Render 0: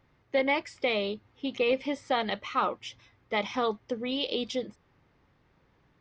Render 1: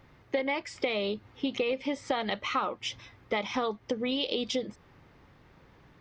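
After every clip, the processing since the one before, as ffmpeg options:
ffmpeg -i in.wav -af "acompressor=threshold=-36dB:ratio=6,volume=8.5dB" out.wav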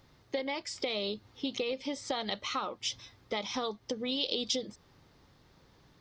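ffmpeg -i in.wav -af "highshelf=frequency=3200:width_type=q:width=1.5:gain=8,volume=-4.5dB" out.wav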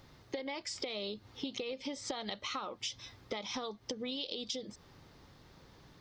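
ffmpeg -i in.wav -af "acompressor=threshold=-40dB:ratio=6,volume=3.5dB" out.wav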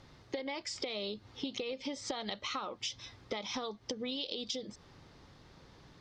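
ffmpeg -i in.wav -af "lowpass=8600,volume=1dB" out.wav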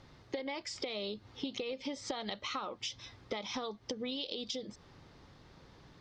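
ffmpeg -i in.wav -af "highshelf=frequency=5400:gain=-4" out.wav

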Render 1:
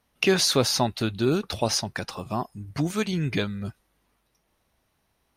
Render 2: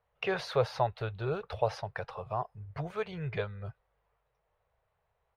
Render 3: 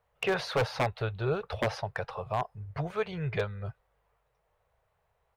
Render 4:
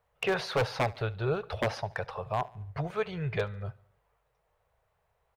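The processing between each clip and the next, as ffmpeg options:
ffmpeg -i in.wav -af "firequalizer=gain_entry='entry(130,0);entry(260,-26);entry(450,4);entry(6500,-24)':delay=0.05:min_phase=1,volume=-5.5dB" out.wav
ffmpeg -i in.wav -af "aeval=exprs='0.0668*(abs(mod(val(0)/0.0668+3,4)-2)-1)':channel_layout=same,volume=3.5dB" out.wav
ffmpeg -i in.wav -af "aecho=1:1:72|144|216|288:0.0794|0.0421|0.0223|0.0118" out.wav

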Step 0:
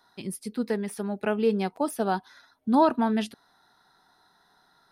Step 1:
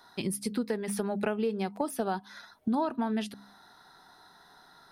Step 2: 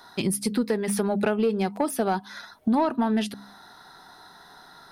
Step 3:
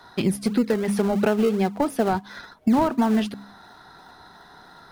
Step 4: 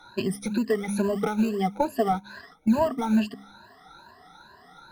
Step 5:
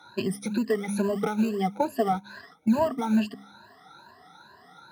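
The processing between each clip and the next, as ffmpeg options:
ffmpeg -i in.wav -af "bandreject=frequency=67.62:width_type=h:width=4,bandreject=frequency=135.24:width_type=h:width=4,bandreject=frequency=202.86:width_type=h:width=4,bandreject=frequency=270.48:width_type=h:width=4,acompressor=threshold=-34dB:ratio=6,volume=6.5dB" out.wav
ffmpeg -i in.wav -af "asoftclip=type=tanh:threshold=-20.5dB,volume=7.5dB" out.wav
ffmpeg -i in.wav -filter_complex "[0:a]highshelf=frequency=5700:gain=-11,asplit=2[link_01][link_02];[link_02]acrusher=samples=35:mix=1:aa=0.000001:lfo=1:lforange=35:lforate=2.9,volume=-12dB[link_03];[link_01][link_03]amix=inputs=2:normalize=0,volume=2dB" out.wav
ffmpeg -i in.wav -af "afftfilt=real='re*pow(10,23/40*sin(2*PI*(1.4*log(max(b,1)*sr/1024/100)/log(2)-(2.3)*(pts-256)/sr)))':imag='im*pow(10,23/40*sin(2*PI*(1.4*log(max(b,1)*sr/1024/100)/log(2)-(2.3)*(pts-256)/sr)))':win_size=1024:overlap=0.75,volume=-8.5dB" out.wav
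ffmpeg -i in.wav -af "highpass=frequency=81:width=0.5412,highpass=frequency=81:width=1.3066,volume=-1dB" out.wav

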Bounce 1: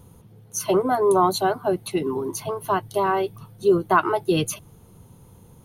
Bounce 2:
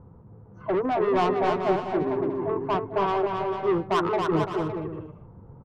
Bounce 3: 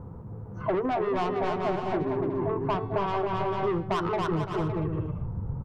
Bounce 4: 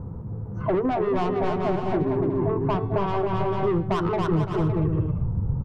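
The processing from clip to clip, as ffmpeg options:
ffmpeg -i in.wav -filter_complex "[0:a]lowpass=frequency=1400:width=0.5412,lowpass=frequency=1400:width=1.3066,asoftclip=type=tanh:threshold=-20.5dB,asplit=2[link_01][link_02];[link_02]aecho=0:1:270|445.5|559.6|633.7|681.9:0.631|0.398|0.251|0.158|0.1[link_03];[link_01][link_03]amix=inputs=2:normalize=0" out.wav
ffmpeg -i in.wav -af "bandreject=frequency=378.4:width_type=h:width=4,bandreject=frequency=756.8:width_type=h:width=4,bandreject=frequency=1135.2:width_type=h:width=4,bandreject=frequency=1513.6:width_type=h:width=4,bandreject=frequency=1892:width_type=h:width=4,bandreject=frequency=2270.4:width_type=h:width=4,bandreject=frequency=2648.8:width_type=h:width=4,bandreject=frequency=3027.2:width_type=h:width=4,bandreject=frequency=3405.6:width_type=h:width=4,bandreject=frequency=3784:width_type=h:width=4,bandreject=frequency=4162.4:width_type=h:width=4,bandreject=frequency=4540.8:width_type=h:width=4,bandreject=frequency=4919.2:width_type=h:width=4,bandreject=frequency=5297.6:width_type=h:width=4,bandreject=frequency=5676:width_type=h:width=4,asubboost=boost=3:cutoff=180,acompressor=threshold=-32dB:ratio=10,volume=7.5dB" out.wav
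ffmpeg -i in.wav -af "lowshelf=frequency=390:gain=8" out.wav

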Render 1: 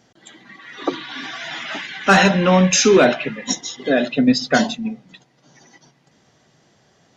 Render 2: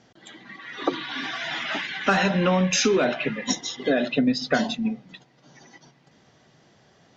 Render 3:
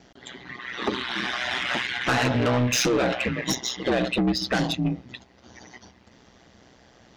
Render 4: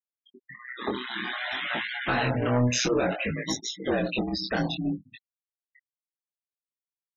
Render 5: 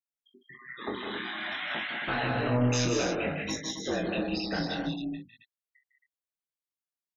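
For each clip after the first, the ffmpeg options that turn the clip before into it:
ffmpeg -i in.wav -af "lowpass=5700,acompressor=threshold=-18dB:ratio=6" out.wav
ffmpeg -i in.wav -af "aeval=exprs='val(0)*sin(2*PI*62*n/s)':channel_layout=same,asoftclip=type=tanh:threshold=-24dB,volume=6.5dB" out.wav
ffmpeg -i in.wav -af "afftfilt=real='re*gte(hypot(re,im),0.0501)':imag='im*gte(hypot(re,im),0.0501)':win_size=1024:overlap=0.75,flanger=delay=18.5:depth=5.9:speed=0.56" out.wav
ffmpeg -i in.wav -af "aecho=1:1:40.82|154.5|189.5|271.1:0.355|0.398|0.562|0.447,volume=-5.5dB" out.wav

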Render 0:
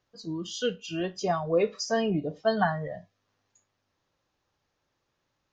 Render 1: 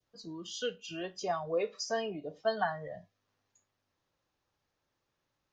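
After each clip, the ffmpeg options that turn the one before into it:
ffmpeg -i in.wav -filter_complex "[0:a]adynamicequalizer=threshold=0.00794:dfrequency=1400:dqfactor=0.89:tfrequency=1400:tqfactor=0.89:attack=5:release=100:ratio=0.375:range=2:mode=cutabove:tftype=bell,acrossover=split=390[link_01][link_02];[link_01]acompressor=threshold=-42dB:ratio=6[link_03];[link_03][link_02]amix=inputs=2:normalize=0,volume=-4.5dB" out.wav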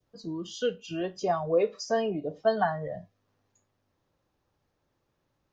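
ffmpeg -i in.wav -af "tiltshelf=frequency=970:gain=5,volume=4.5dB" out.wav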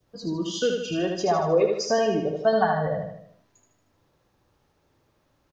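ffmpeg -i in.wav -filter_complex "[0:a]asplit=2[link_01][link_02];[link_02]acompressor=threshold=-32dB:ratio=6,volume=2.5dB[link_03];[link_01][link_03]amix=inputs=2:normalize=0,aecho=1:1:77|154|231|308|385|462:0.631|0.303|0.145|0.0698|0.0335|0.0161" out.wav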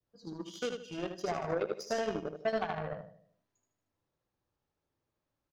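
ffmpeg -i in.wav -af "alimiter=limit=-15dB:level=0:latency=1:release=80,aeval=exprs='0.178*(cos(1*acos(clip(val(0)/0.178,-1,1)))-cos(1*PI/2))+0.0398*(cos(3*acos(clip(val(0)/0.178,-1,1)))-cos(3*PI/2))+0.00141*(cos(7*acos(clip(val(0)/0.178,-1,1)))-cos(7*PI/2))':channel_layout=same,volume=-7.5dB" out.wav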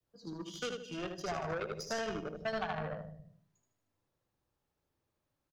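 ffmpeg -i in.wav -filter_complex "[0:a]acrossover=split=180|920[link_01][link_02][link_03];[link_01]aecho=1:1:268:0.596[link_04];[link_02]asoftclip=type=tanh:threshold=-38.5dB[link_05];[link_04][link_05][link_03]amix=inputs=3:normalize=0,volume=1dB" out.wav

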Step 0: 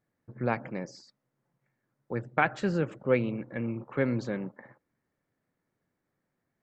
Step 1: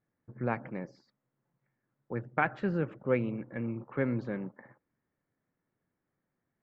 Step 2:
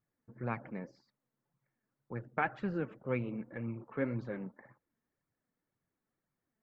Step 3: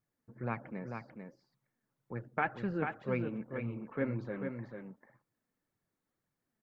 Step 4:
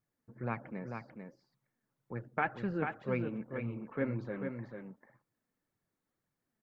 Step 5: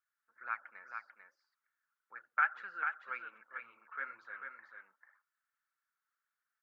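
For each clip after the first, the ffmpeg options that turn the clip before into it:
ffmpeg -i in.wav -af "lowpass=2300,equalizer=frequency=590:width=1.5:gain=-2,volume=-2dB" out.wav
ffmpeg -i in.wav -af "flanger=delay=0.8:depth=3.8:regen=39:speed=1.9:shape=sinusoidal" out.wav
ffmpeg -i in.wav -af "aecho=1:1:443:0.501" out.wav
ffmpeg -i in.wav -af anull out.wav
ffmpeg -i in.wav -af "highpass=frequency=1400:width_type=q:width=5.7,volume=-6dB" out.wav

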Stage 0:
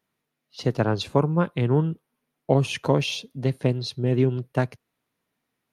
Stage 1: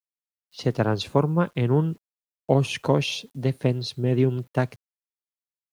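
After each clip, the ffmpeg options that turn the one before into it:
ffmpeg -i in.wav -af "acrusher=bits=9:mix=0:aa=0.000001" out.wav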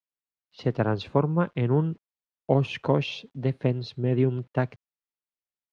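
ffmpeg -i in.wav -af "lowpass=3100,volume=-2dB" out.wav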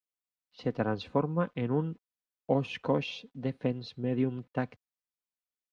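ffmpeg -i in.wav -af "aecho=1:1:4:0.42,volume=-5.5dB" out.wav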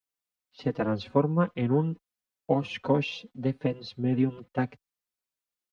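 ffmpeg -i in.wav -filter_complex "[0:a]asplit=2[link_01][link_02];[link_02]adelay=4.8,afreqshift=1.7[link_03];[link_01][link_03]amix=inputs=2:normalize=1,volume=6dB" out.wav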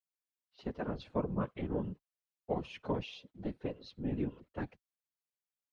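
ffmpeg -i in.wav -af "afftfilt=real='hypot(re,im)*cos(2*PI*random(0))':imag='hypot(re,im)*sin(2*PI*random(1))':win_size=512:overlap=0.75,volume=-4.5dB" out.wav

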